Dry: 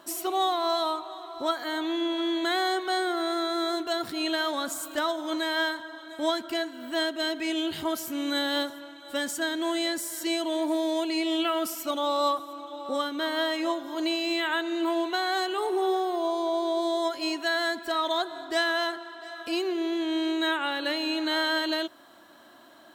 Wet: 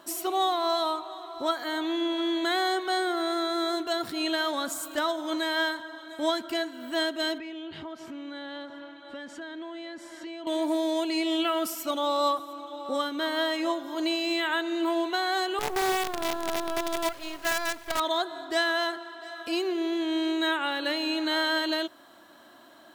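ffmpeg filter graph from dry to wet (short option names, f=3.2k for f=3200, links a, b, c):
-filter_complex "[0:a]asettb=1/sr,asplit=3[a][b][c];[a]atrim=end=7.384[d];[b]atrim=start=7.38:end=10.47,asetpts=PTS-STARTPTS,afade=t=in:d=0.004:c=qsin,afade=t=out:st=3.086:d=0.004:c=qsin,lowpass=3k,acompressor=threshold=-37dB:ratio=4:attack=3.2:release=140:knee=1:detection=peak[e];[c]atrim=start=10.466[f];[d][e]acrossfade=d=0.004:c1=hsin:c2=qsin[g];[g][f]acrossfade=d=0.004:c1=qsin:c2=hsin,asettb=1/sr,asplit=3[h][i][j];[h]atrim=end=15.594[k];[i]atrim=start=15.59:end=18,asetpts=PTS-STARTPTS,afade=t=in:d=0.004:c=qsin,afade=t=out:st=2.406:d=0.004:c=qsin,bass=f=250:g=-15,treble=f=4k:g=-14,acrusher=bits=5:dc=4:mix=0:aa=0.000001[l];[j]atrim=start=17.996[m];[k][l]acrossfade=d=0.004:c1=hsin:c2=qsin[n];[n][m]acrossfade=d=0.004:c1=qsin:c2=hsin"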